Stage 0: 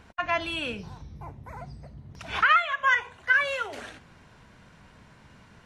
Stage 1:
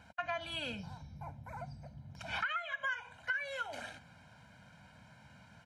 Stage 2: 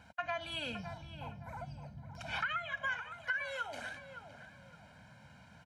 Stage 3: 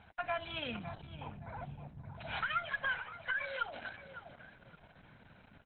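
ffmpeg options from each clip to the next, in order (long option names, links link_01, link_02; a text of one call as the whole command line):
ffmpeg -i in.wav -af "highpass=94,aecho=1:1:1.3:0.86,acompressor=threshold=-27dB:ratio=6,volume=-7dB" out.wav
ffmpeg -i in.wav -filter_complex "[0:a]asplit=2[link_01][link_02];[link_02]adelay=564,lowpass=frequency=1700:poles=1,volume=-9dB,asplit=2[link_03][link_04];[link_04]adelay=564,lowpass=frequency=1700:poles=1,volume=0.36,asplit=2[link_05][link_06];[link_06]adelay=564,lowpass=frequency=1700:poles=1,volume=0.36,asplit=2[link_07][link_08];[link_08]adelay=564,lowpass=frequency=1700:poles=1,volume=0.36[link_09];[link_01][link_03][link_05][link_07][link_09]amix=inputs=5:normalize=0" out.wav
ffmpeg -i in.wav -af "aeval=exprs='0.0841*(cos(1*acos(clip(val(0)/0.0841,-1,1)))-cos(1*PI/2))+0.00188*(cos(8*acos(clip(val(0)/0.0841,-1,1)))-cos(8*PI/2))':channel_layout=same,aexciter=amount=2.6:drive=3.4:freq=5100,volume=1.5dB" -ar 48000 -c:a libopus -b:a 8k out.opus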